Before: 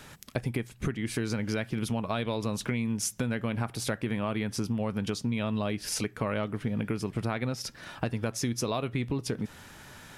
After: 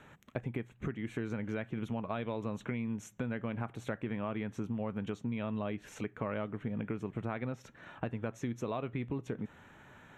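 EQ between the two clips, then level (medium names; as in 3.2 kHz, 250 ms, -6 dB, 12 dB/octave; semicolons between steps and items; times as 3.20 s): boxcar filter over 9 samples; bass shelf 63 Hz -9.5 dB; -5.0 dB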